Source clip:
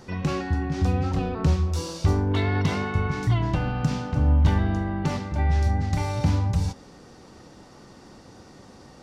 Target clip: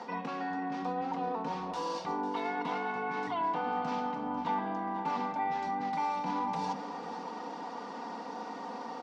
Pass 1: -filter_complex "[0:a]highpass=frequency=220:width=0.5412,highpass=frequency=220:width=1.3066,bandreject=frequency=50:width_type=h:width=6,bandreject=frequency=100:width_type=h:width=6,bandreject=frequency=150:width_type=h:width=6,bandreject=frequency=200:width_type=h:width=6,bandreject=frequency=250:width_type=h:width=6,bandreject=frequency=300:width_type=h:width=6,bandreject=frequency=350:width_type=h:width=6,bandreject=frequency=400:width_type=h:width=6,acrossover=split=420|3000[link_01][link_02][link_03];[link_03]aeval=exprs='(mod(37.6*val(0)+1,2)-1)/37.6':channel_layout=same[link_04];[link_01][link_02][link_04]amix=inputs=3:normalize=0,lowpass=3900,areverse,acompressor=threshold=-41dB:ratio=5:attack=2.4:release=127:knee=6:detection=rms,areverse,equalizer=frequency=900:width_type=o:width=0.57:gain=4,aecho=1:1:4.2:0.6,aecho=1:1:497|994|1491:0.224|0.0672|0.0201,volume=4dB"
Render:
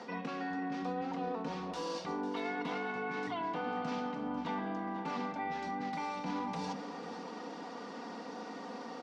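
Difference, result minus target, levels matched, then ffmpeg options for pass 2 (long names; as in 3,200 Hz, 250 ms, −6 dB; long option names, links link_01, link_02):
1,000 Hz band −2.5 dB
-filter_complex "[0:a]highpass=frequency=220:width=0.5412,highpass=frequency=220:width=1.3066,bandreject=frequency=50:width_type=h:width=6,bandreject=frequency=100:width_type=h:width=6,bandreject=frequency=150:width_type=h:width=6,bandreject=frequency=200:width_type=h:width=6,bandreject=frequency=250:width_type=h:width=6,bandreject=frequency=300:width_type=h:width=6,bandreject=frequency=350:width_type=h:width=6,bandreject=frequency=400:width_type=h:width=6,acrossover=split=420|3000[link_01][link_02][link_03];[link_03]aeval=exprs='(mod(37.6*val(0)+1,2)-1)/37.6':channel_layout=same[link_04];[link_01][link_02][link_04]amix=inputs=3:normalize=0,lowpass=3900,areverse,acompressor=threshold=-41dB:ratio=5:attack=2.4:release=127:knee=6:detection=rms,areverse,equalizer=frequency=900:width_type=o:width=0.57:gain=13,aecho=1:1:4.2:0.6,aecho=1:1:497|994|1491:0.224|0.0672|0.0201,volume=4dB"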